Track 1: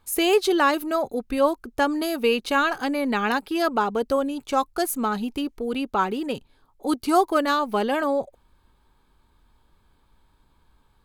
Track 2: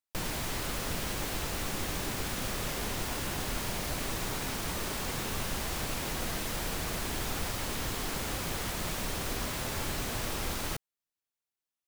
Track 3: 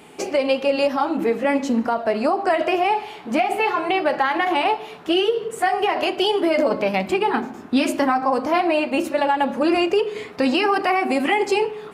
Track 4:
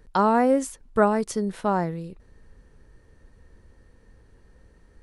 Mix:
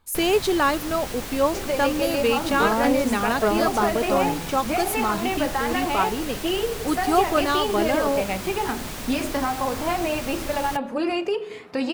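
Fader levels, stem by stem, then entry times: -1.0, +1.0, -6.0, -3.5 dB; 0.00, 0.00, 1.35, 2.45 s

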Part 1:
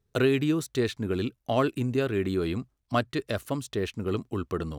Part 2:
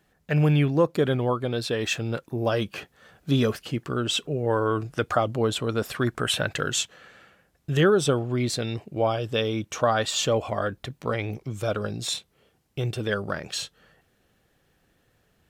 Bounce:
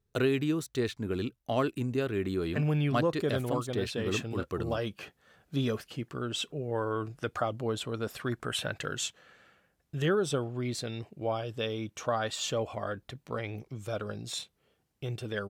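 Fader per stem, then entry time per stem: -4.0, -8.0 dB; 0.00, 2.25 s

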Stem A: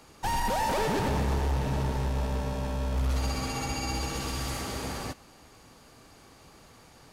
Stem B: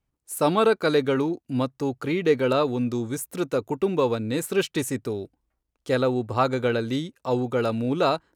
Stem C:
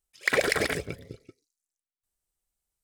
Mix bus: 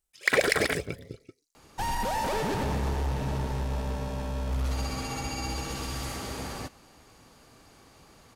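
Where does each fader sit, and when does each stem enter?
-1.5 dB, off, +1.0 dB; 1.55 s, off, 0.00 s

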